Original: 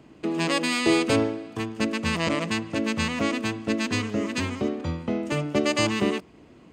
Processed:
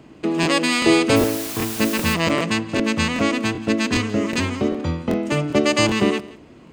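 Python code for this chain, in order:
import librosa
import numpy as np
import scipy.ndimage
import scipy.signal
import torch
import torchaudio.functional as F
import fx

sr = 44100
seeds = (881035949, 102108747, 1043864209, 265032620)

y = fx.quant_dither(x, sr, seeds[0], bits=6, dither='triangular', at=(1.15, 2.13), fade=0.02)
y = y + 10.0 ** (-20.0 / 20.0) * np.pad(y, (int(173 * sr / 1000.0), 0))[:len(y)]
y = fx.buffer_crackle(y, sr, first_s=0.41, period_s=0.39, block=1024, kind='repeat')
y = y * librosa.db_to_amplitude(5.5)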